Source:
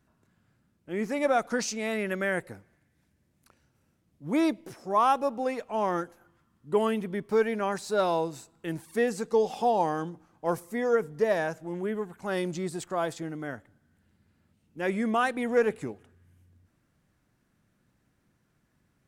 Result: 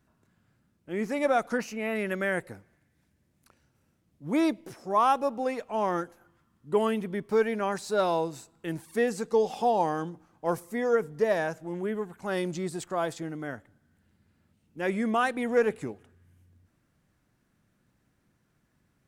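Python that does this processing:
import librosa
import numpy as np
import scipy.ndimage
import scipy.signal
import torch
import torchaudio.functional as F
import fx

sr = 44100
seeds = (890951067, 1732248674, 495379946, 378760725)

y = fx.spec_box(x, sr, start_s=1.57, length_s=0.39, low_hz=3100.0, high_hz=10000.0, gain_db=-12)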